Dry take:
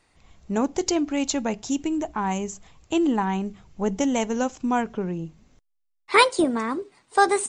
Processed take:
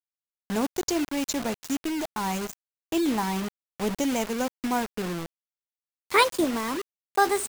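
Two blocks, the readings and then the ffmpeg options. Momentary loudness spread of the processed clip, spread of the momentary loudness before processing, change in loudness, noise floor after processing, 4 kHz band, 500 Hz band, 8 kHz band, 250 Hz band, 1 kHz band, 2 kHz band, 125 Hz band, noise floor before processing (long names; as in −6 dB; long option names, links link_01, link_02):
10 LU, 11 LU, −3.0 dB, below −85 dBFS, −1.5 dB, −3.5 dB, −2.0 dB, −3.5 dB, −3.5 dB, −3.0 dB, −3.5 dB, −72 dBFS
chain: -filter_complex "[0:a]asplit=2[link_01][link_02];[link_02]adelay=120,highpass=300,lowpass=3400,asoftclip=type=hard:threshold=-13dB,volume=-27dB[link_03];[link_01][link_03]amix=inputs=2:normalize=0,acrusher=bits=4:mix=0:aa=0.000001,volume=-3.5dB"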